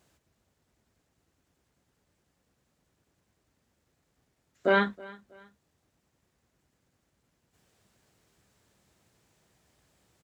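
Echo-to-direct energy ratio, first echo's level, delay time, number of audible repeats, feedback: -21.5 dB, -22.0 dB, 0.321 s, 2, 35%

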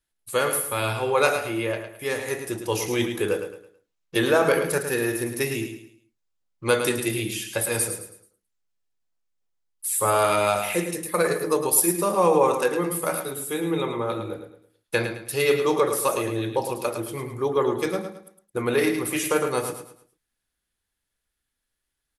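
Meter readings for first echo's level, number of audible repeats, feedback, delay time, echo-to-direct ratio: -8.0 dB, 3, 34%, 0.108 s, -7.5 dB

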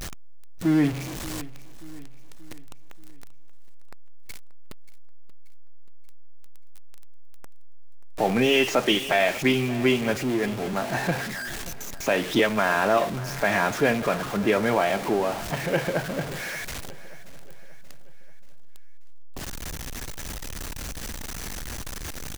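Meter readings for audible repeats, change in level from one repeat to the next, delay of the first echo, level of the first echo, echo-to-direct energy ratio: 3, -6.0 dB, 0.582 s, -17.5 dB, -16.5 dB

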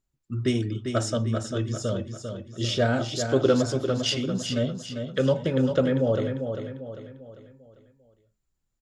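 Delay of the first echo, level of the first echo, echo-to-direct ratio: 0.397 s, -7.0 dB, -6.0 dB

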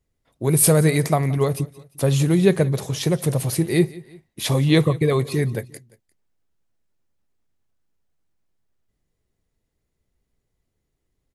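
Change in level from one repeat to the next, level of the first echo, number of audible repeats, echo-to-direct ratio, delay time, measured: -7.0 dB, -20.5 dB, 2, -19.5 dB, 0.175 s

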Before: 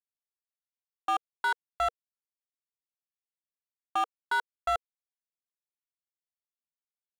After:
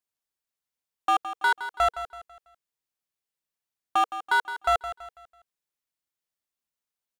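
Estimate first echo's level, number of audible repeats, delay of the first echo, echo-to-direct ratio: -12.0 dB, 3, 0.165 s, -11.5 dB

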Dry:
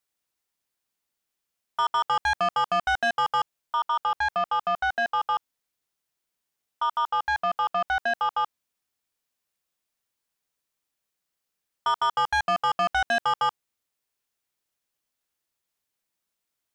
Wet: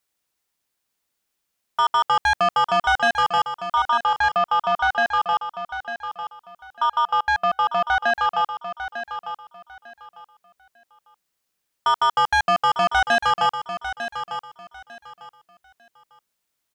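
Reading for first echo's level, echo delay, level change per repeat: -10.0 dB, 0.899 s, -13.0 dB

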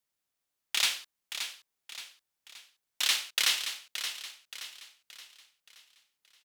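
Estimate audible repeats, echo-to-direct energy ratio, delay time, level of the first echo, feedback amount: 4, -8.0 dB, 0.574 s, -9.0 dB, 43%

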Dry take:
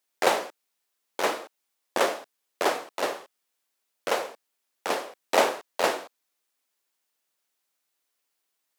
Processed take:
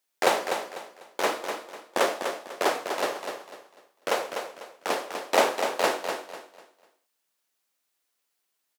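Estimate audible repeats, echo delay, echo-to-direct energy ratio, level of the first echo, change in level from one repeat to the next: 3, 0.248 s, -6.5 dB, -7.0 dB, -10.5 dB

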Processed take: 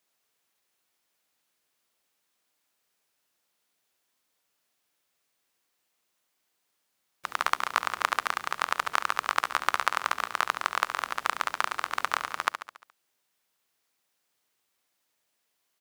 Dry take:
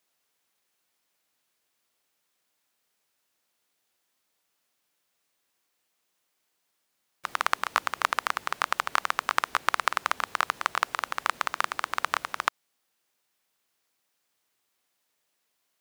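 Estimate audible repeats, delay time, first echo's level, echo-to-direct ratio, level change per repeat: 5, 70 ms, -10.0 dB, -8.5 dB, -5.0 dB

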